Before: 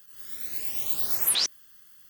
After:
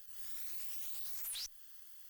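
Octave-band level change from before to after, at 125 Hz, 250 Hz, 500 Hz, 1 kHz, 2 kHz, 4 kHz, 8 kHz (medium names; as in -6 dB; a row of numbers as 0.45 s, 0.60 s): no reading, under -30 dB, under -25 dB, -21.5 dB, -17.0 dB, -18.0 dB, -17.0 dB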